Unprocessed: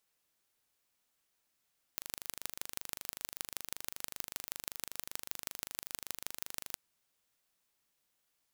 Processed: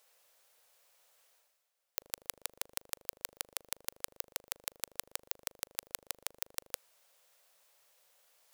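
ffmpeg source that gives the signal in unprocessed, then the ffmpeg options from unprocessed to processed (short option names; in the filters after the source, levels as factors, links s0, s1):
-f lavfi -i "aevalsrc='0.376*eq(mod(n,1750),0)*(0.5+0.5*eq(mod(n,7000),0))':d=4.78:s=44100"
-af "lowshelf=f=390:t=q:w=3:g=-10.5,areverse,acompressor=mode=upward:threshold=0.00316:ratio=2.5,areverse,aeval=exprs='0.376*(cos(1*acos(clip(val(0)/0.376,-1,1)))-cos(1*PI/2))+0.15*(cos(3*acos(clip(val(0)/0.376,-1,1)))-cos(3*PI/2))+0.0596*(cos(5*acos(clip(val(0)/0.376,-1,1)))-cos(5*PI/2))+0.0376*(cos(8*acos(clip(val(0)/0.376,-1,1)))-cos(8*PI/2))':c=same"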